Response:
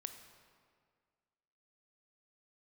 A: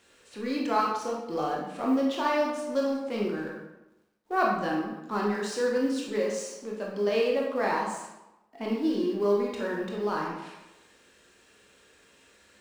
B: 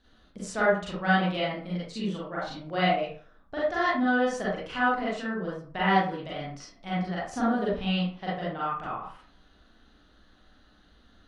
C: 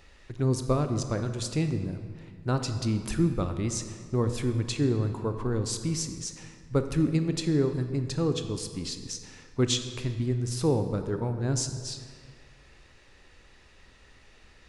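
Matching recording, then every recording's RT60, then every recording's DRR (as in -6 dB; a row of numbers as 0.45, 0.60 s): C; 1.0, 0.45, 1.9 s; -3.0, -8.0, 7.5 dB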